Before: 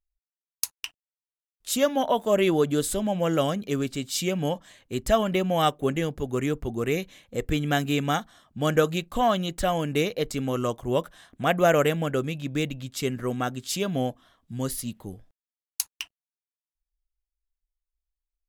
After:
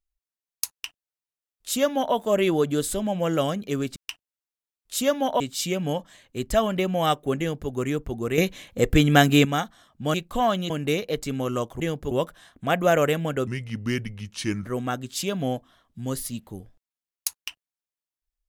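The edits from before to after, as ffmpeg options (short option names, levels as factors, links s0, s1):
-filter_complex "[0:a]asplit=11[s0][s1][s2][s3][s4][s5][s6][s7][s8][s9][s10];[s0]atrim=end=3.962[s11];[s1]atrim=start=0.708:end=2.152[s12];[s2]atrim=start=3.958:end=6.942[s13];[s3]atrim=start=6.938:end=8.012,asetpts=PTS-STARTPTS,volume=2.51[s14];[s4]atrim=start=8.008:end=8.702[s15];[s5]atrim=start=8.948:end=9.512[s16];[s6]atrim=start=9.778:end=10.882[s17];[s7]atrim=start=5.948:end=6.262[s18];[s8]atrim=start=10.878:end=12.244[s19];[s9]atrim=start=12.24:end=13.19,asetpts=PTS-STARTPTS,asetrate=35280,aresample=44100[s20];[s10]atrim=start=13.186[s21];[s11][s12]acrossfade=d=0.004:c1=hsin:c2=hsin[s22];[s22][s13]acrossfade=d=0.004:c1=hsin:c2=hsin[s23];[s23][s14]acrossfade=d=0.004:c1=hsin:c2=hsin[s24];[s24][s15]acrossfade=d=0.004:c1=hsin:c2=hsin[s25];[s25][s16]acrossfade=d=0.004:c1=hsin:c2=hsin[s26];[s26][s17]acrossfade=d=0.004:c1=hsin:c2=hsin[s27];[s27][s18]acrossfade=d=0.004:c1=hsin:c2=hsin[s28];[s28][s19]acrossfade=d=0.004:c1=hsin:c2=hsin[s29];[s29][s20]acrossfade=d=0.004:c1=hsin:c2=hsin[s30];[s30][s21]acrossfade=d=0.004:c1=hsin:c2=hsin"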